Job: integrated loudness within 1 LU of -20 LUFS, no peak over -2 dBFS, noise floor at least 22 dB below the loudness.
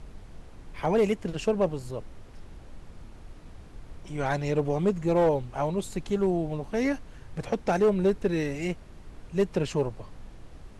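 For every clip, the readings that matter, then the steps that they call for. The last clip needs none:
clipped 0.7%; flat tops at -16.5 dBFS; noise floor -48 dBFS; noise floor target -50 dBFS; loudness -27.5 LUFS; peak -16.5 dBFS; loudness target -20.0 LUFS
-> clip repair -16.5 dBFS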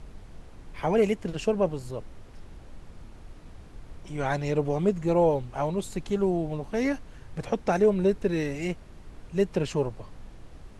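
clipped 0.0%; noise floor -48 dBFS; noise floor target -50 dBFS
-> noise print and reduce 6 dB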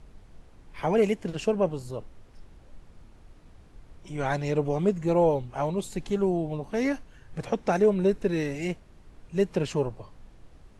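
noise floor -53 dBFS; loudness -27.5 LUFS; peak -11.5 dBFS; loudness target -20.0 LUFS
-> gain +7.5 dB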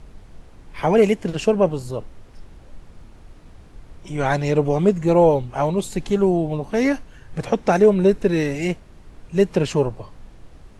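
loudness -20.0 LUFS; peak -4.0 dBFS; noise floor -46 dBFS

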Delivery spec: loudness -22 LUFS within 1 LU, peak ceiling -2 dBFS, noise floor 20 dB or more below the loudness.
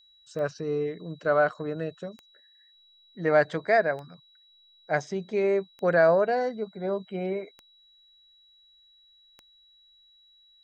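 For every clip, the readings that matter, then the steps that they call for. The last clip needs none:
clicks 6; steady tone 3900 Hz; tone level -57 dBFS; loudness -26.5 LUFS; peak -9.5 dBFS; loudness target -22.0 LUFS
-> de-click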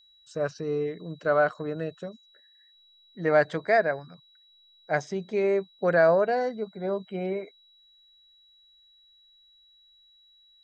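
clicks 0; steady tone 3900 Hz; tone level -57 dBFS
-> notch 3900 Hz, Q 30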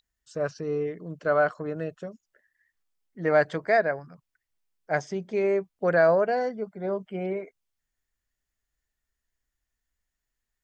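steady tone none; loudness -26.5 LUFS; peak -10.0 dBFS; loudness target -22.0 LUFS
-> gain +4.5 dB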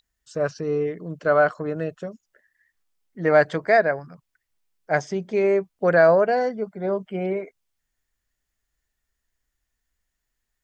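loudness -22.0 LUFS; peak -5.5 dBFS; noise floor -80 dBFS

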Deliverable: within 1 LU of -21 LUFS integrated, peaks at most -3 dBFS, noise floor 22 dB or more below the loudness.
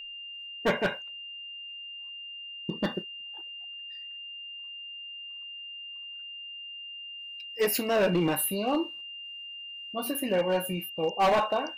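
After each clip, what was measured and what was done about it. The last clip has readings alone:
clipped 1.1%; flat tops at -19.5 dBFS; steady tone 2800 Hz; tone level -39 dBFS; loudness -31.5 LUFS; peak -19.5 dBFS; loudness target -21.0 LUFS
-> clip repair -19.5 dBFS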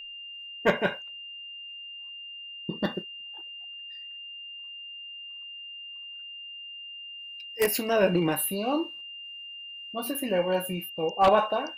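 clipped 0.0%; steady tone 2800 Hz; tone level -39 dBFS
-> notch 2800 Hz, Q 30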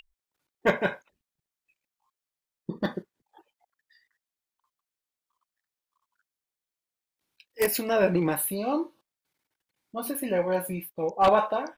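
steady tone none; loudness -27.0 LUFS; peak -10.0 dBFS; loudness target -21.0 LUFS
-> gain +6 dB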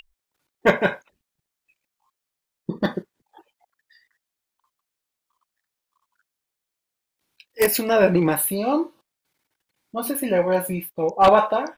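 loudness -21.0 LUFS; peak -4.0 dBFS; noise floor -84 dBFS

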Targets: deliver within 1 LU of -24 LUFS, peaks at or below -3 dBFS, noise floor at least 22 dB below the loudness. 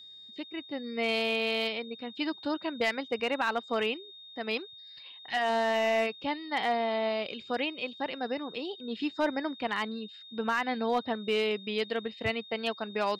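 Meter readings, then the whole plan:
clipped 0.3%; flat tops at -20.0 dBFS; steady tone 3700 Hz; tone level -47 dBFS; loudness -31.5 LUFS; peak -20.0 dBFS; loudness target -24.0 LUFS
-> clip repair -20 dBFS; notch 3700 Hz, Q 30; gain +7.5 dB

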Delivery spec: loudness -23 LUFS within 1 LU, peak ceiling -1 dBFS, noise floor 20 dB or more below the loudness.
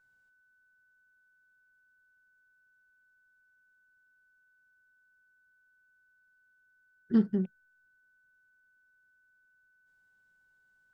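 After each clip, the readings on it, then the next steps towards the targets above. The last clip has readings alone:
steady tone 1500 Hz; tone level -66 dBFS; loudness -30.0 LUFS; peak -15.0 dBFS; loudness target -23.0 LUFS
-> notch 1500 Hz, Q 30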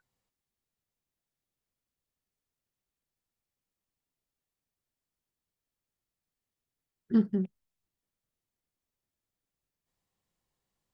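steady tone none; loudness -30.0 LUFS; peak -15.0 dBFS; loudness target -23.0 LUFS
-> gain +7 dB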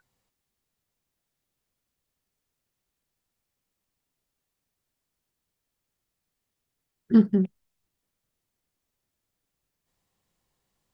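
loudness -23.0 LUFS; peak -8.0 dBFS; noise floor -83 dBFS

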